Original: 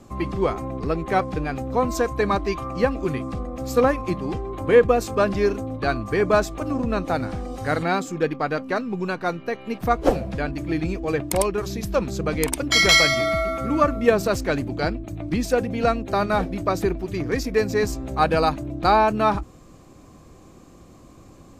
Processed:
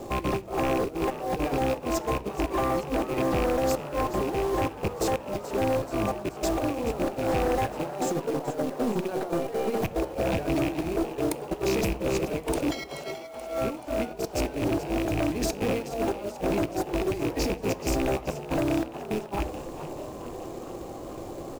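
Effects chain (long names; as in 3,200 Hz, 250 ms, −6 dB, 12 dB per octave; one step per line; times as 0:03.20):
loose part that buzzes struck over −28 dBFS, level −22 dBFS
flat-topped bell 540 Hz +11 dB
hum removal 75.42 Hz, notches 10
compressor whose output falls as the input rises −24 dBFS, ratio −0.5
soft clipping −17.5 dBFS, distortion −12 dB
floating-point word with a short mantissa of 2 bits
echo with shifted repeats 430 ms, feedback 61%, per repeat +94 Hz, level −13 dB
on a send at −17 dB: convolution reverb RT60 0.60 s, pre-delay 8 ms
on the sum: level −3.5 dB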